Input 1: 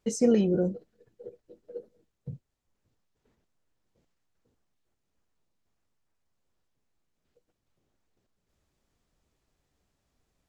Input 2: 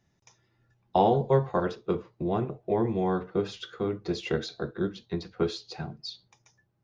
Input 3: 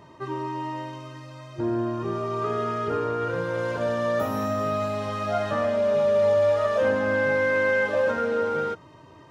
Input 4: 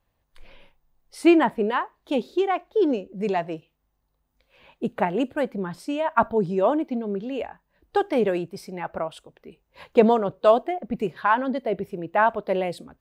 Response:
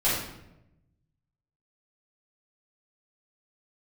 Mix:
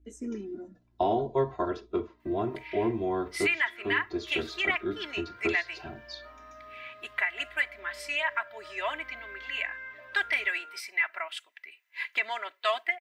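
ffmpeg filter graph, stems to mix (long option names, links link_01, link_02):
-filter_complex "[0:a]bandreject=frequency=60:width_type=h:width=6,bandreject=frequency=120:width_type=h:width=6,bandreject=frequency=180:width_type=h:width=6,aeval=exprs='val(0)+0.00355*(sin(2*PI*60*n/s)+sin(2*PI*2*60*n/s)/2+sin(2*PI*3*60*n/s)/3+sin(2*PI*4*60*n/s)/4+sin(2*PI*5*60*n/s)/5)':channel_layout=same,asplit=2[link_01][link_02];[link_02]afreqshift=-0.65[link_03];[link_01][link_03]amix=inputs=2:normalize=1,volume=-12dB[link_04];[1:a]adelay=50,volume=-4.5dB[link_05];[2:a]bandpass=frequency=2000:width_type=q:width=1.6:csg=0,adelay=2050,volume=-15dB[link_06];[3:a]highpass=frequency=2000:width_type=q:width=5,adelay=2200,volume=1.5dB[link_07];[link_04][link_05][link_06][link_07]amix=inputs=4:normalize=0,highshelf=frequency=4700:gain=-3.5,aecho=1:1:3:0.85,alimiter=limit=-16dB:level=0:latency=1:release=282"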